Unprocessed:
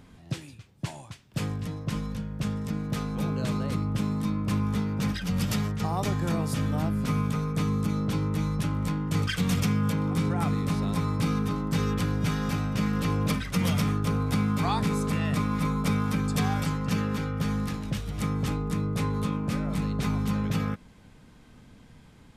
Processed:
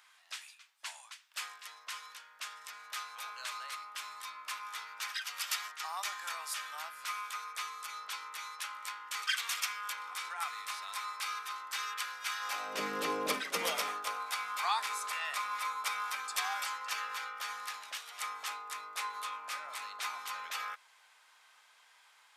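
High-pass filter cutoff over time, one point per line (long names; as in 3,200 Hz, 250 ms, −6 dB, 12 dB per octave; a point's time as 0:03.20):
high-pass filter 24 dB per octave
0:12.38 1,100 Hz
0:12.82 370 Hz
0:13.49 370 Hz
0:14.33 910 Hz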